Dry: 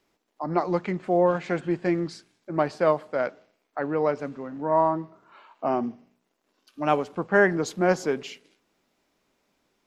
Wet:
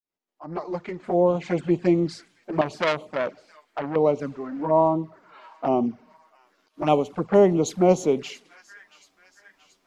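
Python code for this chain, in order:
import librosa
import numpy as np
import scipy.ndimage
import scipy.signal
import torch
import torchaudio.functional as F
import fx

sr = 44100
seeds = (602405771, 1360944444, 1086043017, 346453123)

y = fx.fade_in_head(x, sr, length_s=1.71)
y = fx.echo_wet_highpass(y, sr, ms=678, feedback_pct=60, hz=2000.0, wet_db=-18.5)
y = fx.auto_swell(y, sr, attack_ms=173.0, at=(5.75, 6.82))
y = fx.env_flanger(y, sr, rest_ms=11.4, full_db=-22.0)
y = fx.dynamic_eq(y, sr, hz=1600.0, q=2.1, threshold_db=-47.0, ratio=4.0, max_db=-7)
y = fx.transformer_sat(y, sr, knee_hz=2300.0, at=(2.61, 3.96))
y = y * librosa.db_to_amplitude(5.5)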